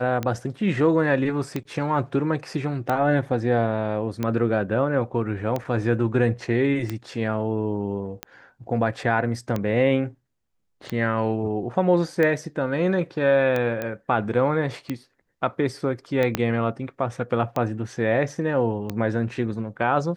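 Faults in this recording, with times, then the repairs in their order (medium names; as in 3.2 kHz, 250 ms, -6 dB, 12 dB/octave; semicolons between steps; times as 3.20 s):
tick 45 rpm -13 dBFS
13.82 s: pop -15 dBFS
16.35 s: pop -7 dBFS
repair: de-click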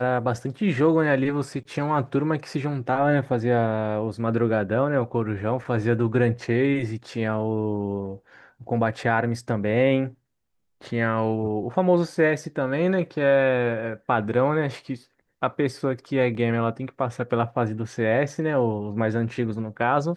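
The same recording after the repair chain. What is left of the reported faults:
16.35 s: pop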